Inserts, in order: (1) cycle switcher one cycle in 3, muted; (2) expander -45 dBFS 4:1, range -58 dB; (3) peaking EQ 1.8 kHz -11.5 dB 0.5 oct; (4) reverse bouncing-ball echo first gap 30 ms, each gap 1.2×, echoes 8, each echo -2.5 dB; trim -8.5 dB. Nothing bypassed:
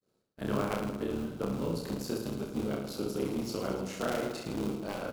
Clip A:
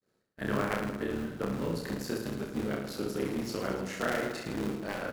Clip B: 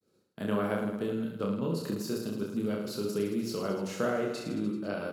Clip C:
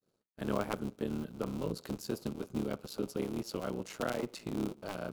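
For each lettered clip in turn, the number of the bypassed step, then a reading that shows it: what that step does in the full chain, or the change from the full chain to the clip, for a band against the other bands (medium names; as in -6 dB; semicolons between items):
3, 2 kHz band +6.5 dB; 1, 250 Hz band +2.0 dB; 4, loudness change -3.5 LU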